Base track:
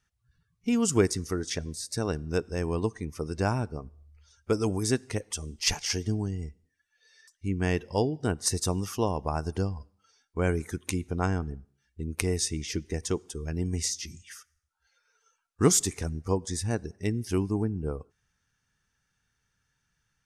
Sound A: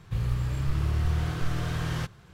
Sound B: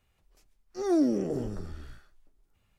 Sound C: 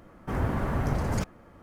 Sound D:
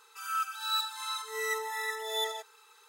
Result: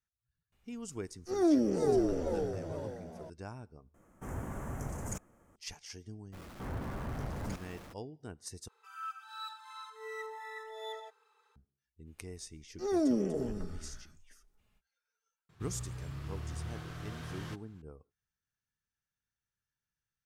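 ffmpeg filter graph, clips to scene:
-filter_complex "[2:a]asplit=2[a][b];[3:a]asplit=2[c][d];[0:a]volume=-18dB[e];[a]asplit=6[f][g][h][i][j][k];[g]adelay=445,afreqshift=79,volume=-3dB[l];[h]adelay=890,afreqshift=158,volume=-10.7dB[m];[i]adelay=1335,afreqshift=237,volume=-18.5dB[n];[j]adelay=1780,afreqshift=316,volume=-26.2dB[o];[k]adelay=2225,afreqshift=395,volume=-34dB[p];[f][l][m][n][o][p]amix=inputs=6:normalize=0[q];[c]highshelf=f=5.6k:t=q:w=3:g=8.5[r];[d]aeval=exprs='val(0)+0.5*0.0211*sgn(val(0))':c=same[s];[4:a]lowpass=f=1.2k:p=1[t];[b]aecho=1:1:4.7:0.34[u];[1:a]highpass=f=98:p=1[v];[e]asplit=3[w][x][y];[w]atrim=end=3.944[z];[r]atrim=end=1.62,asetpts=PTS-STARTPTS,volume=-12dB[aa];[x]atrim=start=5.556:end=8.684[ab];[t]atrim=end=2.88,asetpts=PTS-STARTPTS,volume=-6dB[ac];[y]atrim=start=11.556[ad];[q]atrim=end=2.78,asetpts=PTS-STARTPTS,volume=-2dB,afade=t=in:d=0.004:c=hsin,afade=t=out:st=2.776:d=0.004:c=hsin,adelay=520[ae];[s]atrim=end=1.62,asetpts=PTS-STARTPTS,volume=-12.5dB,afade=t=in:d=0.02,afade=t=out:st=1.6:d=0.02,adelay=6320[af];[u]atrim=end=2.78,asetpts=PTS-STARTPTS,volume=-3.5dB,afade=t=in:d=0.05,afade=t=out:st=2.73:d=0.05,adelay=12040[ag];[v]atrim=end=2.33,asetpts=PTS-STARTPTS,volume=-11dB,afade=t=in:d=0.004:c=hsin,afade=t=out:st=2.326:d=0.004:c=hsin,adelay=15490[ah];[z][aa]acrossfade=d=0.004:c1=hsin:c2=hsin[ai];[ai][ab]acrossfade=d=0.004:c1=hsin:c2=hsin[aj];[aj][ac]acrossfade=d=0.004:c1=hsin:c2=hsin[ak];[ak][ad]acrossfade=d=0.004:c1=hsin:c2=hsin[al];[al][ae][af][ag][ah]amix=inputs=5:normalize=0"

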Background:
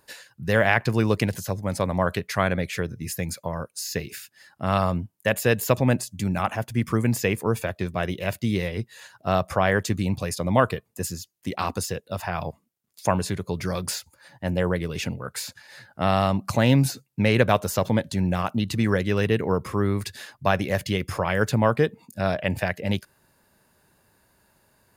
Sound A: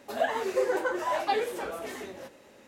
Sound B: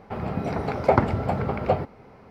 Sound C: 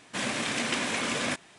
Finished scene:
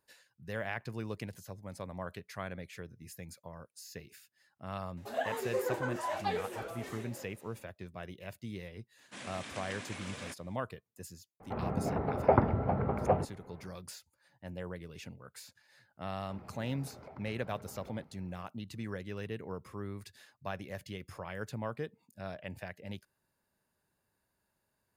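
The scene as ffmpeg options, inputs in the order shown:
-filter_complex "[2:a]asplit=2[a][b];[0:a]volume=-18dB[c];[3:a]highpass=57[d];[a]lowpass=1.6k[e];[b]acompressor=threshold=-31dB:ratio=6:attack=3.2:release=140:knee=1:detection=peak[f];[1:a]atrim=end=2.67,asetpts=PTS-STARTPTS,volume=-7dB,afade=t=in:d=0.004:c=hsin,afade=t=out:st=2.666:d=0.004:c=hsin,adelay=219177S[g];[d]atrim=end=1.58,asetpts=PTS-STARTPTS,volume=-15.5dB,afade=t=in:d=0.004:c=hsin,afade=t=out:st=1.576:d=0.004:c=hsin,adelay=396018S[h];[e]atrim=end=2.3,asetpts=PTS-STARTPTS,volume=-5.5dB,afade=t=in:d=0.004:c=hsin,afade=t=out:st=2.296:d=0.004:c=hsin,adelay=11400[i];[f]atrim=end=2.3,asetpts=PTS-STARTPTS,volume=-17dB,afade=t=in:d=0.004:c=hsin,afade=t=out:st=2.296:d=0.004:c=hsin,adelay=16190[j];[c][g][h][i][j]amix=inputs=5:normalize=0"

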